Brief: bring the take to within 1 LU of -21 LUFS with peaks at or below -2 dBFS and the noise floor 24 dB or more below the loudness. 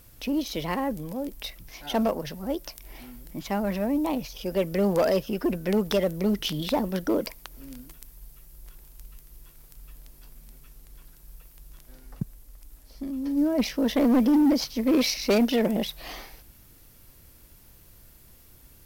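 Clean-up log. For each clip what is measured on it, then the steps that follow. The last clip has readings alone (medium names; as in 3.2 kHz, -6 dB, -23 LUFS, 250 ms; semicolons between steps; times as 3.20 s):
clipped samples 1.0%; clipping level -16.5 dBFS; loudness -26.0 LUFS; peak level -16.5 dBFS; loudness target -21.0 LUFS
-> clip repair -16.5 dBFS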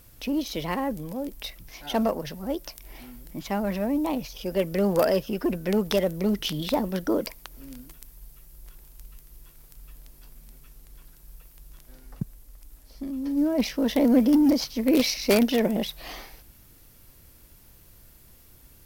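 clipped samples 0.0%; loudness -25.5 LUFS; peak level -7.5 dBFS; loudness target -21.0 LUFS
-> trim +4.5 dB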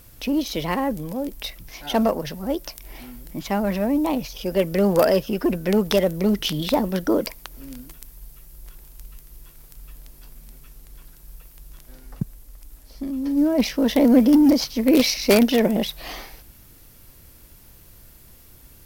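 loudness -21.0 LUFS; peak level -3.0 dBFS; noise floor -49 dBFS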